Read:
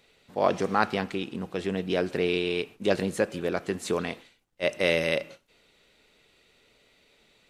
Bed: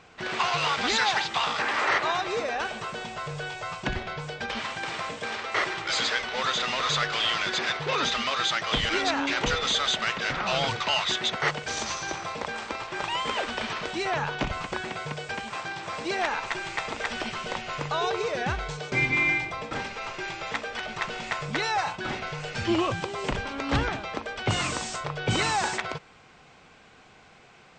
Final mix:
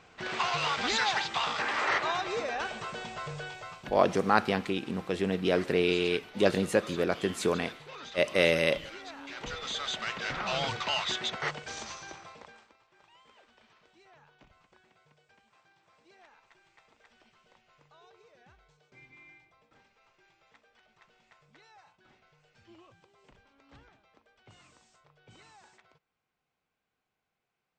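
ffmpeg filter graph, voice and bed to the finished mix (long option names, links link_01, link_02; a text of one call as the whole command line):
ffmpeg -i stem1.wav -i stem2.wav -filter_complex "[0:a]adelay=3550,volume=0dB[link_01];[1:a]volume=10dB,afade=type=out:start_time=3.29:duration=0.7:silence=0.177828,afade=type=in:start_time=9.18:duration=1.24:silence=0.199526,afade=type=out:start_time=11.09:duration=1.65:silence=0.0473151[link_02];[link_01][link_02]amix=inputs=2:normalize=0" out.wav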